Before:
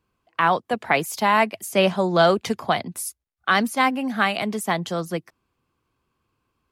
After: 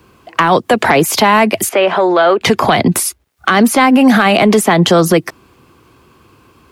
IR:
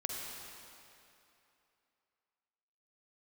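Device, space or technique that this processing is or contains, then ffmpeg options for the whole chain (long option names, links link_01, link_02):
mastering chain: -filter_complex "[0:a]highpass=56,equalizer=frequency=360:width_type=o:width=0.77:gain=4,acrossover=split=380|1400|3600[link_01][link_02][link_03][link_04];[link_01]acompressor=threshold=-30dB:ratio=4[link_05];[link_02]acompressor=threshold=-25dB:ratio=4[link_06];[link_03]acompressor=threshold=-30dB:ratio=4[link_07];[link_04]acompressor=threshold=-44dB:ratio=4[link_08];[link_05][link_06][link_07][link_08]amix=inputs=4:normalize=0,acompressor=threshold=-27dB:ratio=2.5,asoftclip=type=tanh:threshold=-17dB,asoftclip=type=hard:threshold=-19.5dB,alimiter=level_in=27dB:limit=-1dB:release=50:level=0:latency=1,asettb=1/sr,asplit=3[link_09][link_10][link_11];[link_09]atrim=end=1.694[link_12];[link_10]atrim=start=1.69:end=2.41,asetpts=PTS-STARTPTS,afade=type=in:duration=0.004:curve=qsin,afade=type=out:start_time=0.716:duration=0.004:curve=qsin,acrossover=split=330 3200:gain=0.0794 1 0.141[link_13][link_14][link_15];[link_13][link_14][link_15]amix=inputs=3:normalize=0[link_16];[link_11]atrim=start=2.406[link_17];[link_12][link_16]acrossfade=duration=0.004:curve1=hsin:curve2=qsin[link_18];[link_18][link_17]acrossfade=duration=0.004:curve1=qsin:curve2=hsin,volume=-1dB"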